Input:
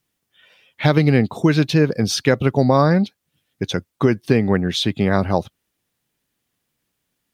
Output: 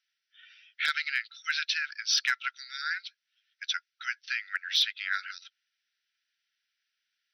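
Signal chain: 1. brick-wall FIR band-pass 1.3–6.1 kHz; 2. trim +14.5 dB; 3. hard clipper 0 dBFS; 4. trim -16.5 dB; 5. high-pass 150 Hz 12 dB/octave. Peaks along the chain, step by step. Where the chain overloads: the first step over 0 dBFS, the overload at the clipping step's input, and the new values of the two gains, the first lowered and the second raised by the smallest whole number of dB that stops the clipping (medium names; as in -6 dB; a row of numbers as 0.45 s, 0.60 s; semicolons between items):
-10.5 dBFS, +4.0 dBFS, 0.0 dBFS, -16.5 dBFS, -15.5 dBFS; step 2, 4.0 dB; step 2 +10.5 dB, step 4 -12.5 dB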